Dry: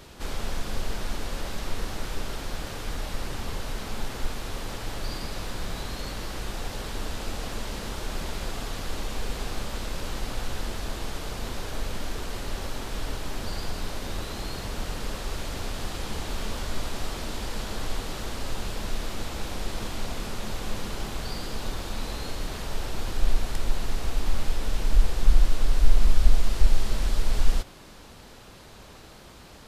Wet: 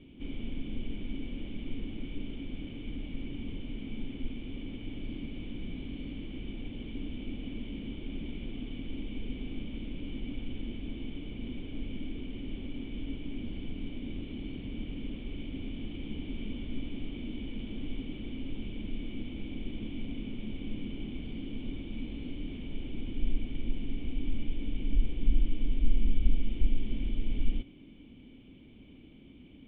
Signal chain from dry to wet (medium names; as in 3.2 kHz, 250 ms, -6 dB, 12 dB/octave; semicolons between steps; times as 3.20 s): cascade formant filter i; trim +6 dB